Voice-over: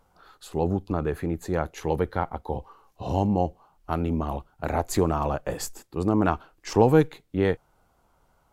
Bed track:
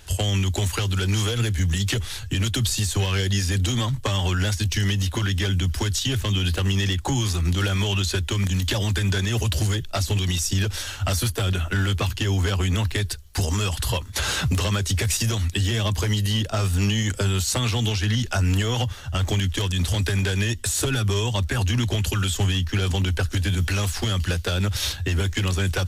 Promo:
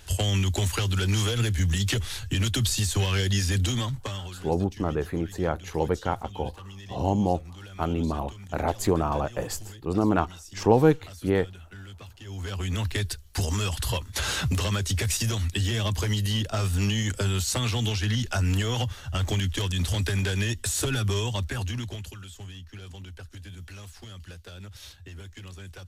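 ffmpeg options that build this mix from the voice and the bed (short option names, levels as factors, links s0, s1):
-filter_complex "[0:a]adelay=3900,volume=0.944[s0];[1:a]volume=5.96,afade=t=out:st=3.6:d=0.77:silence=0.112202,afade=t=in:st=12.22:d=0.74:silence=0.133352,afade=t=out:st=21.14:d=1.04:silence=0.158489[s1];[s0][s1]amix=inputs=2:normalize=0"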